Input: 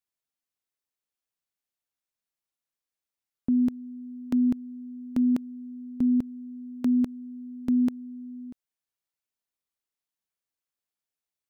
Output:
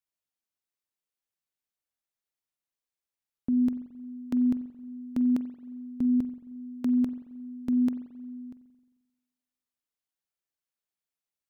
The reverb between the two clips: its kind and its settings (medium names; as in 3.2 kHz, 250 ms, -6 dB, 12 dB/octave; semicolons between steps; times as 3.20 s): spring tank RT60 1.2 s, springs 44 ms, chirp 50 ms, DRR 12 dB; trim -3 dB